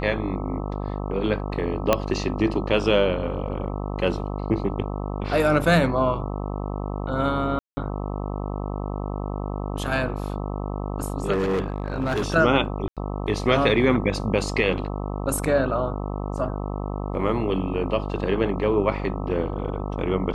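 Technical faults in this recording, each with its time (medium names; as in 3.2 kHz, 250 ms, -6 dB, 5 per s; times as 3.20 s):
buzz 50 Hz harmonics 26 -29 dBFS
1.93 s: pop -4 dBFS
7.59–7.77 s: dropout 180 ms
11.32–12.30 s: clipped -20 dBFS
12.88–12.97 s: dropout 87 ms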